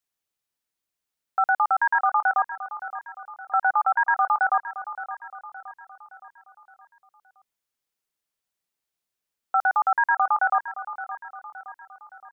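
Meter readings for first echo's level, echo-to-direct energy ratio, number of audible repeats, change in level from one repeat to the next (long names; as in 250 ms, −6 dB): −13.0 dB, −12.0 dB, 4, −6.0 dB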